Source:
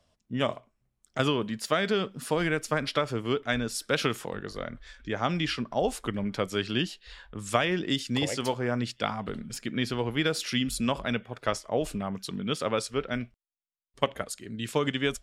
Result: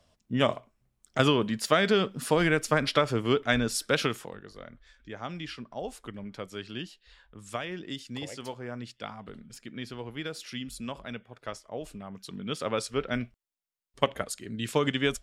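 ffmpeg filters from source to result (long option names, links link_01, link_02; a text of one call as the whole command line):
ffmpeg -i in.wav -af "volume=13.5dB,afade=type=out:start_time=3.77:duration=0.62:silence=0.237137,afade=type=in:start_time=12.07:duration=1.07:silence=0.298538" out.wav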